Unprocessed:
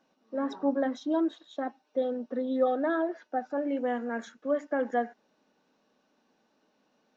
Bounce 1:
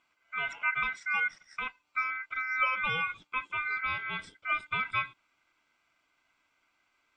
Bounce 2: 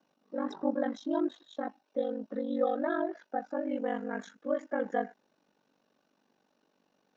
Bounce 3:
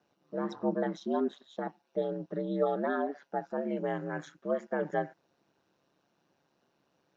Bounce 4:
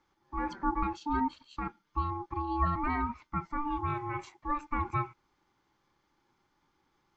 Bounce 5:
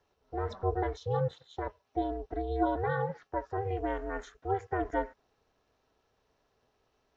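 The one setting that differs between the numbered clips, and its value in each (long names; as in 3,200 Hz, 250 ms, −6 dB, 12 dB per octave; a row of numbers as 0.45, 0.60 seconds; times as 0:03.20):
ring modulation, frequency: 1,800, 24, 70, 590, 190 Hertz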